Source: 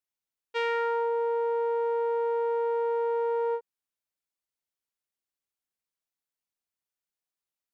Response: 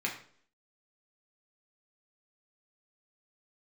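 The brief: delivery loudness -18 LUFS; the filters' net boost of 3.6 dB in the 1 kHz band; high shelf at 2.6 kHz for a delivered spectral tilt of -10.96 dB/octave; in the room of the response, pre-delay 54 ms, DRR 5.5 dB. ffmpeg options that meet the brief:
-filter_complex "[0:a]equalizer=f=1000:t=o:g=3,highshelf=f=2600:g=6.5,asplit=2[s0][s1];[1:a]atrim=start_sample=2205,adelay=54[s2];[s1][s2]afir=irnorm=-1:irlink=0,volume=0.266[s3];[s0][s3]amix=inputs=2:normalize=0,volume=2.66"

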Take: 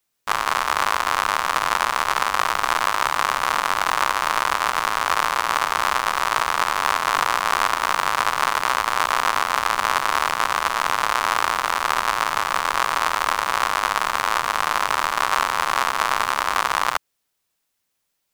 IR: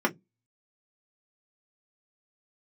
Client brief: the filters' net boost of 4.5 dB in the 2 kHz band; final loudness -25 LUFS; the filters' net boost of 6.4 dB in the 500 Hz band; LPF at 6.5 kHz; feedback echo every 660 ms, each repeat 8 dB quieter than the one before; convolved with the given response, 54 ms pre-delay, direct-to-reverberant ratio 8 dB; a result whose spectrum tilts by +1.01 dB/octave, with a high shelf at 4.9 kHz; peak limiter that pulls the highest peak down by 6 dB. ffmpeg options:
-filter_complex "[0:a]lowpass=6500,equalizer=f=500:t=o:g=8,equalizer=f=2000:t=o:g=6.5,highshelf=f=4900:g=-7.5,alimiter=limit=0.501:level=0:latency=1,aecho=1:1:660|1320|1980|2640|3300:0.398|0.159|0.0637|0.0255|0.0102,asplit=2[s0][s1];[1:a]atrim=start_sample=2205,adelay=54[s2];[s1][s2]afir=irnorm=-1:irlink=0,volume=0.0944[s3];[s0][s3]amix=inputs=2:normalize=0,volume=0.531"

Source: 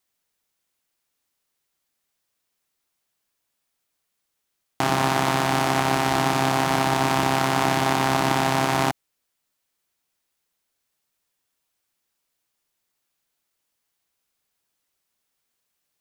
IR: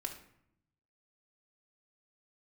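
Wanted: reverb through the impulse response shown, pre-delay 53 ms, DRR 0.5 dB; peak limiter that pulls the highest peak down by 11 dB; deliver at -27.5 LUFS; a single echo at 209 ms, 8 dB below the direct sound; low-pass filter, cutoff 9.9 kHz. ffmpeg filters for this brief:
-filter_complex "[0:a]lowpass=9900,alimiter=limit=0.2:level=0:latency=1,aecho=1:1:209:0.398,asplit=2[s0][s1];[1:a]atrim=start_sample=2205,adelay=53[s2];[s1][s2]afir=irnorm=-1:irlink=0,volume=1[s3];[s0][s3]amix=inputs=2:normalize=0,volume=0.841"

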